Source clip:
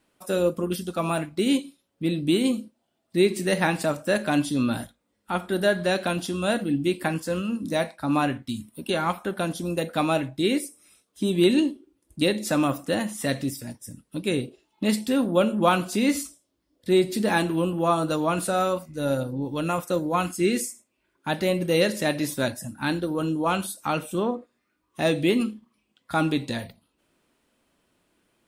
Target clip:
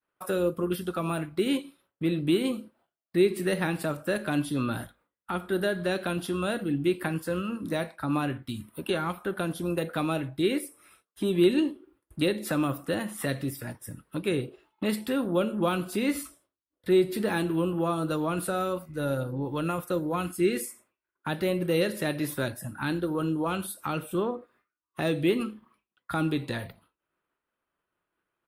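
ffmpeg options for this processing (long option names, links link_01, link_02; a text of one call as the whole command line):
ffmpeg -i in.wav -filter_complex "[0:a]highshelf=frequency=4600:gain=-5,asplit=2[link_01][link_02];[link_02]acompressor=threshold=-35dB:ratio=6,volume=-2.5dB[link_03];[link_01][link_03]amix=inputs=2:normalize=0,agate=range=-33dB:threshold=-52dB:ratio=3:detection=peak,firequalizer=gain_entry='entry(150,0);entry(240,-6);entry(350,2);entry(630,2);entry(1300,11);entry(2100,4);entry(6300,-9);entry(11000,4)':delay=0.05:min_phase=1,acrossover=split=460|3000[link_04][link_05][link_06];[link_05]acompressor=threshold=-36dB:ratio=3[link_07];[link_04][link_07][link_06]amix=inputs=3:normalize=0,volume=-2.5dB" out.wav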